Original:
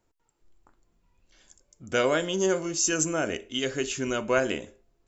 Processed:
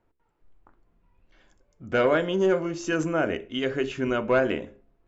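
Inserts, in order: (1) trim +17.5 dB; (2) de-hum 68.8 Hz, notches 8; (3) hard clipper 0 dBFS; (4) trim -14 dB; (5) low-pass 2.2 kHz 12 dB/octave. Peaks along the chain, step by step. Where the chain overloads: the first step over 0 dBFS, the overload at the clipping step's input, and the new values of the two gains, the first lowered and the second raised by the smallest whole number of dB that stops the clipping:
+7.5 dBFS, +7.5 dBFS, 0.0 dBFS, -14.0 dBFS, -13.5 dBFS; step 1, 7.5 dB; step 1 +9.5 dB, step 4 -6 dB

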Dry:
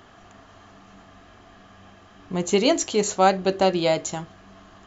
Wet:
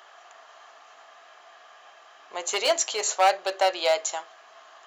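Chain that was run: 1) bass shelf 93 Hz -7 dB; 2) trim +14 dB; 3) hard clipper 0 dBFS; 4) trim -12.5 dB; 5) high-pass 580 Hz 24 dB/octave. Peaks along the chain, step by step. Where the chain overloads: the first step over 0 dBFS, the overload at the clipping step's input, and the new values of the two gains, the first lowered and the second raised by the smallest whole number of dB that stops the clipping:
-5.5 dBFS, +8.5 dBFS, 0.0 dBFS, -12.5 dBFS, -9.5 dBFS; step 2, 8.5 dB; step 2 +5 dB, step 4 -3.5 dB

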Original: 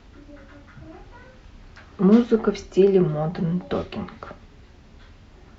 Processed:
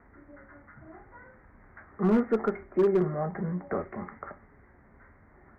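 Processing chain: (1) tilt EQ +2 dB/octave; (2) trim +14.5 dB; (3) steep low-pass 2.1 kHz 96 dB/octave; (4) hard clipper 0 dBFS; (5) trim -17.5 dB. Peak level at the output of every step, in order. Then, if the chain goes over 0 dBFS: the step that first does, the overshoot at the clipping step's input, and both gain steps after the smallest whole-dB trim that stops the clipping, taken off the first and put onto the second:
-8.5 dBFS, +6.0 dBFS, +6.0 dBFS, 0.0 dBFS, -17.5 dBFS; step 2, 6.0 dB; step 2 +8.5 dB, step 5 -11.5 dB

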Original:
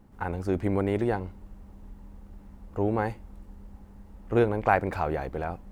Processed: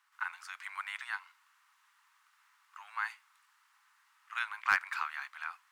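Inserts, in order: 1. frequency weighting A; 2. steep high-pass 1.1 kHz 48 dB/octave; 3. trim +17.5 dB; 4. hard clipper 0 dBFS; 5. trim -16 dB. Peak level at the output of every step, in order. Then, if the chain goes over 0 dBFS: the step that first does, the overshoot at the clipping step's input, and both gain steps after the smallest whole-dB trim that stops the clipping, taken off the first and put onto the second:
-7.0 dBFS, -12.0 dBFS, +5.5 dBFS, 0.0 dBFS, -16.0 dBFS; step 3, 5.5 dB; step 3 +11.5 dB, step 5 -10 dB

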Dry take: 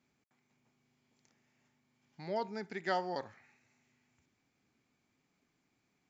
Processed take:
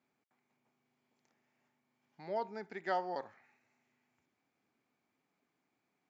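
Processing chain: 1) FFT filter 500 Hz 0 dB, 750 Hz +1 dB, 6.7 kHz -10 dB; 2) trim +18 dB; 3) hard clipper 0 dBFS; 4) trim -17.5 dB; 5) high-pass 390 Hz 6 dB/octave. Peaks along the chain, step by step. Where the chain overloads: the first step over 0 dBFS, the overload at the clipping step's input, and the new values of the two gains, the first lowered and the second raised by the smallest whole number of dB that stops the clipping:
-22.5 dBFS, -4.5 dBFS, -4.5 dBFS, -22.0 dBFS, -23.0 dBFS; nothing clips

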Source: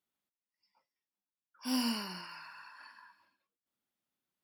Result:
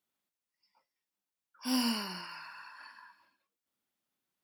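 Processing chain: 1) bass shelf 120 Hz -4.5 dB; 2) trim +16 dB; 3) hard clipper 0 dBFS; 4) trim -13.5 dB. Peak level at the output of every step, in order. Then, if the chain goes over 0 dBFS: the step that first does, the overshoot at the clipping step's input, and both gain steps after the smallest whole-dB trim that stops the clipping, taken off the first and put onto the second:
-22.0 dBFS, -6.0 dBFS, -6.0 dBFS, -19.5 dBFS; nothing clips

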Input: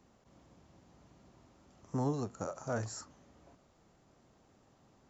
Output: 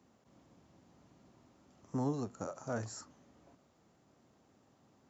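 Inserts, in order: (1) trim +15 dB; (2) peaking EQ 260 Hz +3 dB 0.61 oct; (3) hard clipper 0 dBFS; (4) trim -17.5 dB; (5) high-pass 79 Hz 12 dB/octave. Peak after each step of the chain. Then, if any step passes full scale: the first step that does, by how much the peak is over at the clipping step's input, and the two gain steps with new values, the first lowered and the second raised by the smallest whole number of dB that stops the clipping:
-6.0 dBFS, -5.0 dBFS, -5.0 dBFS, -22.5 dBFS, -23.0 dBFS; nothing clips

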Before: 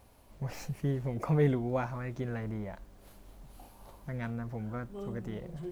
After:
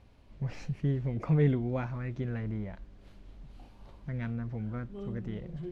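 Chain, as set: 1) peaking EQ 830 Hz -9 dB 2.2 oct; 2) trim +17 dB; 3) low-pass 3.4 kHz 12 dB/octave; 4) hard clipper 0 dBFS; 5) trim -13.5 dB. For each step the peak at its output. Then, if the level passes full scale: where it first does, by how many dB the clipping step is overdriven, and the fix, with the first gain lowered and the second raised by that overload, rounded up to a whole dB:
-19.0 dBFS, -2.0 dBFS, -2.0 dBFS, -2.0 dBFS, -15.5 dBFS; nothing clips

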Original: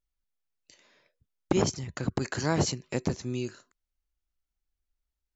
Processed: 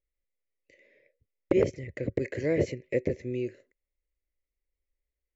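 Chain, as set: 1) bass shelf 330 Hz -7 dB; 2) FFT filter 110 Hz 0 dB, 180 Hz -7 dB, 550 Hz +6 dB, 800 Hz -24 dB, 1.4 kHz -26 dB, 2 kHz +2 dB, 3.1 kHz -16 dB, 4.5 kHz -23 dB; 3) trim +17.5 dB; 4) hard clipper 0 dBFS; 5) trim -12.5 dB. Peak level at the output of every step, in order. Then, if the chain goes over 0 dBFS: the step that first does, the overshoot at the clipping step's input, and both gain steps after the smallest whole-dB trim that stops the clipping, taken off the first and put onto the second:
-12.0 dBFS, -13.0 dBFS, +4.5 dBFS, 0.0 dBFS, -12.5 dBFS; step 3, 4.5 dB; step 3 +12.5 dB, step 5 -7.5 dB

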